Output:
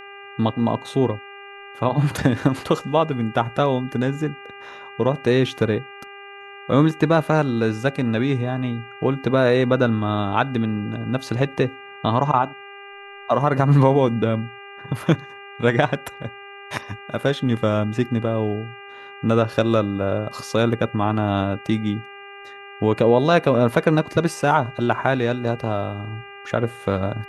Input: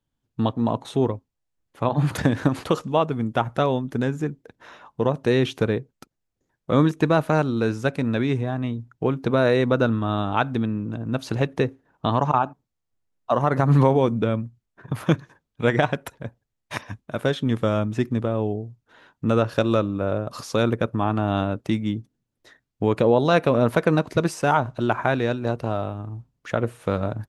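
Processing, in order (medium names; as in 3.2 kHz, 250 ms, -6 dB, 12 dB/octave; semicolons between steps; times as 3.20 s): mains buzz 400 Hz, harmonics 7, -42 dBFS -1 dB/octave; trim +2 dB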